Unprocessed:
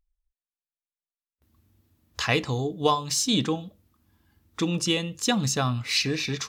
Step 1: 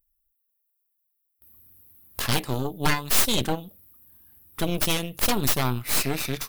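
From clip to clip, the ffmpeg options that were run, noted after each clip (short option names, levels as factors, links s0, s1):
-af "aexciter=amount=12:drive=7.5:freq=9700,aeval=exprs='0.562*(cos(1*acos(clip(val(0)/0.562,-1,1)))-cos(1*PI/2))+0.178*(cos(3*acos(clip(val(0)/0.562,-1,1)))-cos(3*PI/2))+0.0631*(cos(7*acos(clip(val(0)/0.562,-1,1)))-cos(7*PI/2))+0.112*(cos(8*acos(clip(val(0)/0.562,-1,1)))-cos(8*PI/2))':c=same"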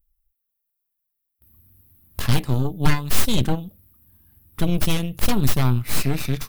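-af "bass=f=250:g=11,treble=f=4000:g=-2,volume=0.891"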